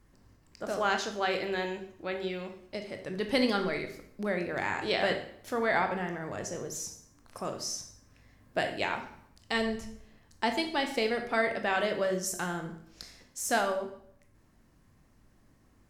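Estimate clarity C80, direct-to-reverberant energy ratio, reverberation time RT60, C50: 12.0 dB, 5.0 dB, 0.65 s, 9.0 dB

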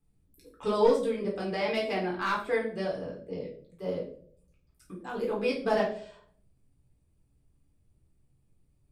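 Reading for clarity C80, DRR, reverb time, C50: 11.0 dB, -4.0 dB, 0.55 s, 6.5 dB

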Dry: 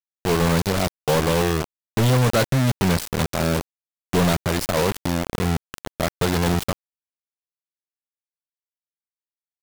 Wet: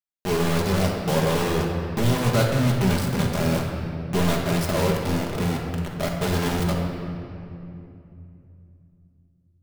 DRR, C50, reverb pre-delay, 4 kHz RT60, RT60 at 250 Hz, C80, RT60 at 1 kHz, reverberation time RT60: -1.5 dB, 2.0 dB, 5 ms, 1.8 s, 3.9 s, 3.5 dB, 2.5 s, 2.8 s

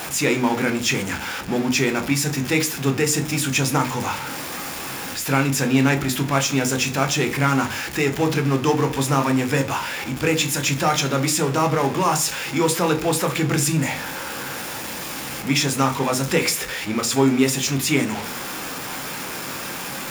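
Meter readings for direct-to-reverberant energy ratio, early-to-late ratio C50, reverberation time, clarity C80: 6.0 dB, 15.5 dB, 0.40 s, 20.0 dB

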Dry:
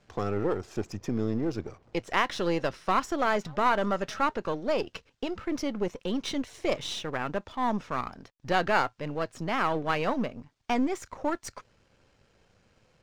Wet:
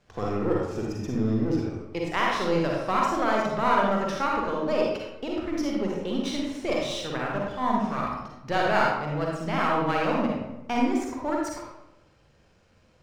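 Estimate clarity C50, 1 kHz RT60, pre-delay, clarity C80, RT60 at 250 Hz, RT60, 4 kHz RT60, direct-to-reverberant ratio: -1.0 dB, 0.85 s, 39 ms, 3.0 dB, 1.0 s, 0.90 s, 0.55 s, -2.5 dB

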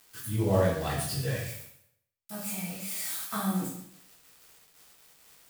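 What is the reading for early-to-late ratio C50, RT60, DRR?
2.5 dB, 0.70 s, -9.0 dB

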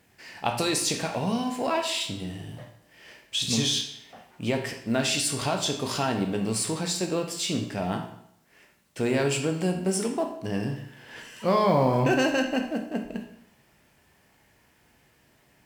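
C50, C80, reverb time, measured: 7.0 dB, 10.5 dB, 0.70 s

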